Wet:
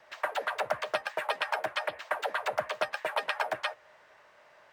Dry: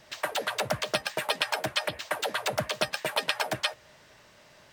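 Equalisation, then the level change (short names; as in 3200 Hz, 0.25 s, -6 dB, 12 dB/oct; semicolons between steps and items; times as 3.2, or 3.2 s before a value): three-band isolator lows -18 dB, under 480 Hz, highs -15 dB, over 2200 Hz; +1.5 dB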